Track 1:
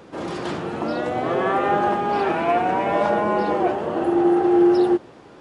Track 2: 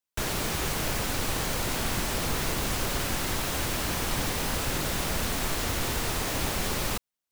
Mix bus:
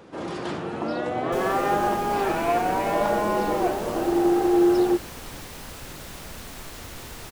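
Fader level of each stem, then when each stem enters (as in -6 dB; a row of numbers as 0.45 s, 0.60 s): -3.0 dB, -10.0 dB; 0.00 s, 1.15 s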